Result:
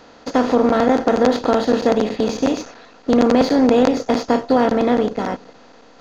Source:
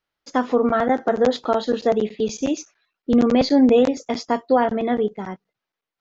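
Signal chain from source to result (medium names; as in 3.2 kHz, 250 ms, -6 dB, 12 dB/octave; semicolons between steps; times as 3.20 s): spectral levelling over time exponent 0.4; in parallel at -4 dB: hysteresis with a dead band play -16 dBFS; on the sum: trim -6.5 dB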